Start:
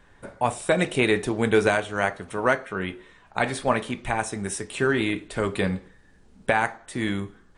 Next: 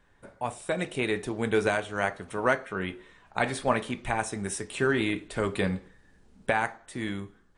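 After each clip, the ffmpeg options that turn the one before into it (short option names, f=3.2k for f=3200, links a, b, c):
-af "dynaudnorm=f=470:g=7:m=11.5dB,volume=-8.5dB"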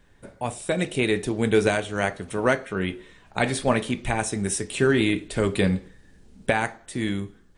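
-af "equalizer=f=1.1k:t=o:w=1.8:g=-7.5,volume=7.5dB"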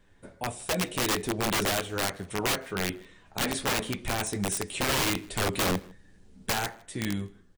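-filter_complex "[0:a]flanger=delay=9.7:depth=2.6:regen=-31:speed=1.3:shape=triangular,aeval=exprs='(mod(11.2*val(0)+1,2)-1)/11.2':c=same,asplit=2[a][b];[b]adelay=157.4,volume=-25dB,highshelf=f=4k:g=-3.54[c];[a][c]amix=inputs=2:normalize=0"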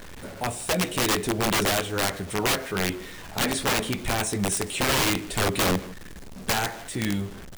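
-af "aeval=exprs='val(0)+0.5*0.0106*sgn(val(0))':c=same,aeval=exprs='val(0)+0.00126*(sin(2*PI*60*n/s)+sin(2*PI*2*60*n/s)/2+sin(2*PI*3*60*n/s)/3+sin(2*PI*4*60*n/s)/4+sin(2*PI*5*60*n/s)/5)':c=same,acrusher=bits=8:mix=0:aa=0.000001,volume=3dB"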